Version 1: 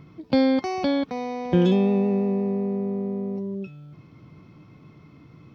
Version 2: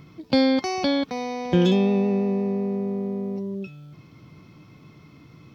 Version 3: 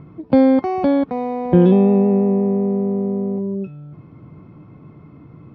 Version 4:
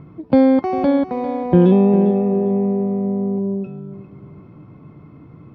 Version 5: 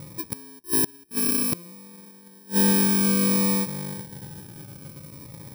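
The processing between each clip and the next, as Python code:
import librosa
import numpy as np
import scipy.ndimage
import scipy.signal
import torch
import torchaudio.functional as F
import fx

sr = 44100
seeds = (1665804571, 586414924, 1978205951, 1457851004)

y1 = fx.high_shelf(x, sr, hz=3100.0, db=10.5)
y2 = scipy.signal.sosfilt(scipy.signal.butter(2, 1100.0, 'lowpass', fs=sr, output='sos'), y1)
y2 = y2 * 10.0 ** (7.0 / 20.0)
y3 = fx.echo_feedback(y2, sr, ms=400, feedback_pct=28, wet_db=-14.0)
y4 = fx.bit_reversed(y3, sr, seeds[0], block=64)
y4 = fx.gate_flip(y4, sr, shuts_db=-10.0, range_db=-32)
y4 = fx.notch_cascade(y4, sr, direction='falling', hz=0.58)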